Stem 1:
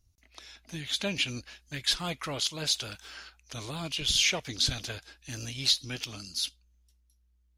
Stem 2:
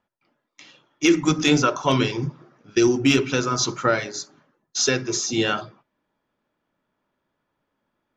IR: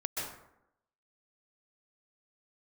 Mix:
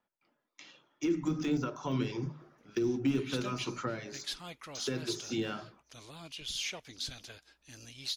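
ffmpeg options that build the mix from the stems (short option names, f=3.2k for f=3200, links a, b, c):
-filter_complex "[0:a]asoftclip=type=tanh:threshold=-14dB,adelay=2400,volume=-11dB[a];[1:a]deesser=0.75,bandreject=f=50:t=h:w=6,bandreject=f=100:t=h:w=6,bandreject=f=150:t=h:w=6,acrossover=split=290[b][c];[c]acompressor=threshold=-30dB:ratio=10[d];[b][d]amix=inputs=2:normalize=0,volume=-6dB[e];[a][e]amix=inputs=2:normalize=0,equalizer=f=74:w=0.66:g=-6"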